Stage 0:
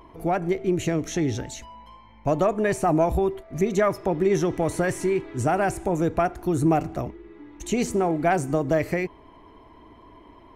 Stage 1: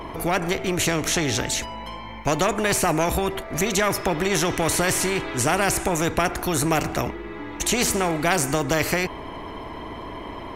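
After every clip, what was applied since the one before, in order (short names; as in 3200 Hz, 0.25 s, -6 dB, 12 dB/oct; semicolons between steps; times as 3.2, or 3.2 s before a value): spectral compressor 2:1; gain +3 dB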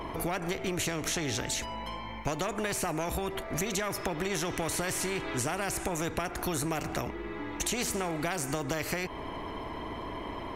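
compressor, threshold -25 dBFS, peak gain reduction 9.5 dB; gain -3.5 dB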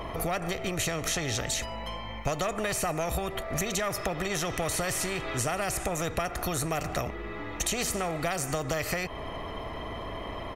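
comb 1.6 ms, depth 42%; gain +1.5 dB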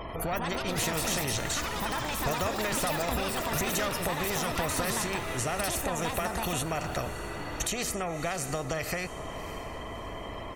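spectral gate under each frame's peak -30 dB strong; diffused feedback echo 0.624 s, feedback 44%, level -13 dB; echoes that change speed 0.218 s, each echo +6 st, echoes 3; gain -2 dB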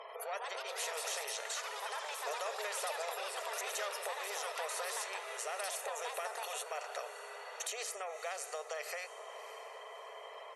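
brick-wall FIR band-pass 400–12000 Hz; gain -8 dB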